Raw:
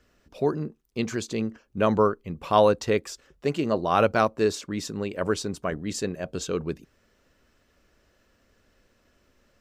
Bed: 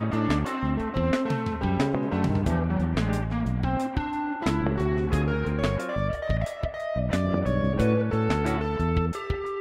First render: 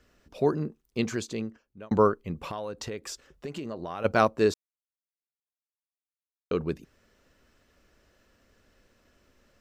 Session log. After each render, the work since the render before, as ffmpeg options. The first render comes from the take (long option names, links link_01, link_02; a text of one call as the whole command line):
ffmpeg -i in.wav -filter_complex "[0:a]asplit=3[link_01][link_02][link_03];[link_01]afade=type=out:start_time=2.45:duration=0.02[link_04];[link_02]acompressor=threshold=-32dB:ratio=8:attack=3.2:release=140:knee=1:detection=peak,afade=type=in:start_time=2.45:duration=0.02,afade=type=out:start_time=4.04:duration=0.02[link_05];[link_03]afade=type=in:start_time=4.04:duration=0.02[link_06];[link_04][link_05][link_06]amix=inputs=3:normalize=0,asplit=4[link_07][link_08][link_09][link_10];[link_07]atrim=end=1.91,asetpts=PTS-STARTPTS,afade=type=out:start_time=1:duration=0.91[link_11];[link_08]atrim=start=1.91:end=4.54,asetpts=PTS-STARTPTS,afade=type=in:duration=0.004:curve=hsin,afade=type=out:start_time=2.626:duration=0.004:curve=hsin[link_12];[link_09]atrim=start=4.54:end=6.51,asetpts=PTS-STARTPTS,volume=0[link_13];[link_10]atrim=start=6.51,asetpts=PTS-STARTPTS,afade=type=in:duration=0.004:curve=hsin[link_14];[link_11][link_12][link_13][link_14]concat=n=4:v=0:a=1" out.wav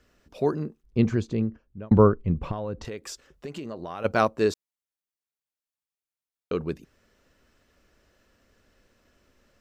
ffmpeg -i in.wav -filter_complex "[0:a]asettb=1/sr,asplit=3[link_01][link_02][link_03];[link_01]atrim=end=0.834[link_04];[link_02]atrim=start=0.83:end=2.85,asetpts=PTS-STARTPTS,afade=type=in:duration=0.004:curve=qsin,afade=type=out:start_time=2.016:duration=0.004:curve=qsin,aemphasis=mode=reproduction:type=riaa[link_05];[link_03]atrim=start=2.846[link_06];[link_04][link_05]acrossfade=duration=0.004:curve1=hsin:curve2=qsin[link_07];[link_07][link_06]acrossfade=duration=0.004:curve1=qsin:curve2=hsin" out.wav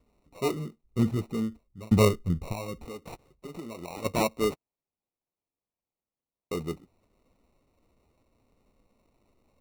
ffmpeg -i in.wav -filter_complex "[0:a]flanger=delay=4:depth=8.1:regen=-39:speed=0.68:shape=sinusoidal,acrossover=split=360[link_01][link_02];[link_02]acrusher=samples=27:mix=1:aa=0.000001[link_03];[link_01][link_03]amix=inputs=2:normalize=0" out.wav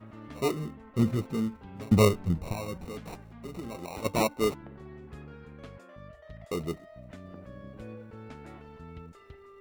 ffmpeg -i in.wav -i bed.wav -filter_complex "[1:a]volume=-21dB[link_01];[0:a][link_01]amix=inputs=2:normalize=0" out.wav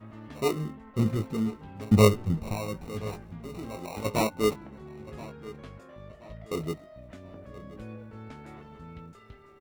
ffmpeg -i in.wav -filter_complex "[0:a]asplit=2[link_01][link_02];[link_02]adelay=19,volume=-7dB[link_03];[link_01][link_03]amix=inputs=2:normalize=0,asplit=2[link_04][link_05];[link_05]adelay=1026,lowpass=frequency=4400:poles=1,volume=-17.5dB,asplit=2[link_06][link_07];[link_07]adelay=1026,lowpass=frequency=4400:poles=1,volume=0.4,asplit=2[link_08][link_09];[link_09]adelay=1026,lowpass=frequency=4400:poles=1,volume=0.4[link_10];[link_04][link_06][link_08][link_10]amix=inputs=4:normalize=0" out.wav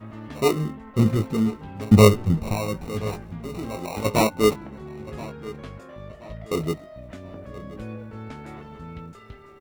ffmpeg -i in.wav -af "volume=6.5dB,alimiter=limit=-2dB:level=0:latency=1" out.wav